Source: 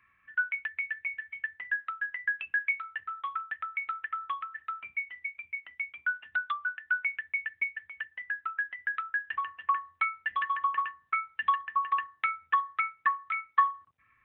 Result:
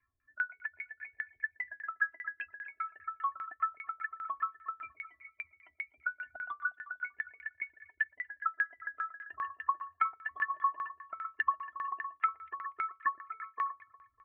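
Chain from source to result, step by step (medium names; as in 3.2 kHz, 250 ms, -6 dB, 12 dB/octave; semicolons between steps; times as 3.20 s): expander on every frequency bin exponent 1.5; comb 2.9 ms, depth 88%; compression 4:1, threshold -33 dBFS, peak gain reduction 15 dB; echo whose repeats swap between lows and highs 120 ms, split 2.1 kHz, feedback 63%, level -12 dB; LFO low-pass saw down 5 Hz 450–1900 Hz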